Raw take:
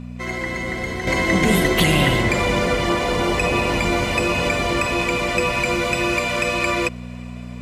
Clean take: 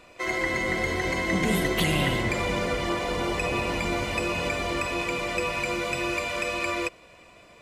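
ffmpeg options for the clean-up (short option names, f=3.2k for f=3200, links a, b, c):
-af "bandreject=f=60.7:t=h:w=4,bandreject=f=121.4:t=h:w=4,bandreject=f=182.1:t=h:w=4,bandreject=f=242.8:t=h:w=4,asetnsamples=n=441:p=0,asendcmd='1.07 volume volume -7.5dB',volume=0dB"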